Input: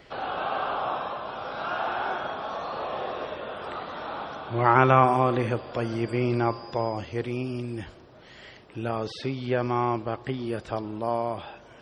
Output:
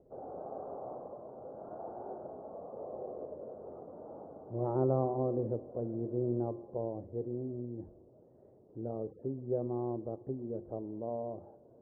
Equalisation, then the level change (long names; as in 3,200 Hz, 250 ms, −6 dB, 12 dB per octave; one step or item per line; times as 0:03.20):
inverse Chebyshev low-pass filter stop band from 3,100 Hz, stop band 80 dB
low-shelf EQ 410 Hz −10 dB
mains-hum notches 50/100/150/200/250/300/350 Hz
0.0 dB